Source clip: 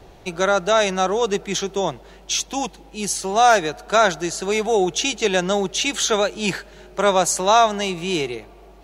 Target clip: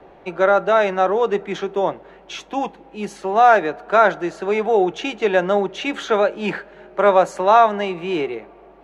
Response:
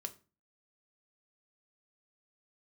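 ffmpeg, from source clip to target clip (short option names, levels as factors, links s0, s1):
-filter_complex "[0:a]acrossover=split=200 2500:gain=0.178 1 0.0631[s0][s1][s2];[s0][s1][s2]amix=inputs=3:normalize=0,asplit=2[s3][s4];[1:a]atrim=start_sample=2205,asetrate=61740,aresample=44100[s5];[s4][s5]afir=irnorm=-1:irlink=0,volume=1.19[s6];[s3][s6]amix=inputs=2:normalize=0,volume=0.891"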